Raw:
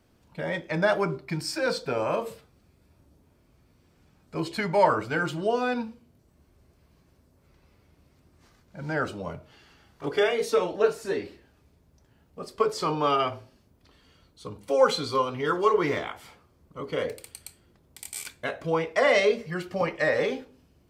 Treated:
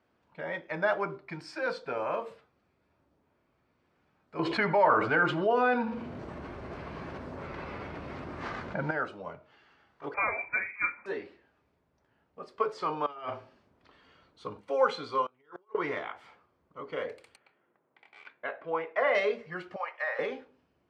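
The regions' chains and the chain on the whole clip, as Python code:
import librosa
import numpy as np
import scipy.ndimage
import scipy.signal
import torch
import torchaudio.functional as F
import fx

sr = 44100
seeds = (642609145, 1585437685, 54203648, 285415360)

y = fx.chain(x, sr, fx.lowpass(hz=2800.0, slope=6),
    fx.echo_single(ms=87, db=-20.5),
    fx.env_flatten(amount_pct=70), at=(4.39, 8.91))
y = fx.chain(y, sr, fx.highpass(hz=250.0, slope=24),
    fx.tilt_eq(slope=4.0),
    fx.freq_invert(carrier_hz=2800), at=(10.14, 11.06))
y = fx.chain(y, sr, fx.clip_hard(threshold_db=-15.5),
    fx.over_compress(threshold_db=-31.0, ratio=-0.5), at=(13.06, 14.61))
y = fx.chain(y, sr, fx.over_compress(threshold_db=-30.0, ratio=-1.0),
    fx.comb_fb(f0_hz=370.0, decay_s=0.52, harmonics='all', damping=0.0, mix_pct=40),
    fx.gate_flip(shuts_db=-25.0, range_db=-27), at=(15.26, 15.75))
y = fx.chain(y, sr, fx.env_lowpass(base_hz=2700.0, full_db=-21.5),
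    fx.highpass(hz=110.0, slope=24),
    fx.bass_treble(bass_db=-8, treble_db=-15), at=(17.36, 19.15))
y = fx.chain(y, sr, fx.highpass(hz=700.0, slope=24),
    fx.high_shelf(hz=3900.0, db=-9.0), at=(19.76, 20.19))
y = scipy.signal.sosfilt(scipy.signal.butter(2, 1500.0, 'lowpass', fs=sr, output='sos'), y)
y = fx.tilt_eq(y, sr, slope=4.0)
y = F.gain(torch.from_numpy(y), -2.0).numpy()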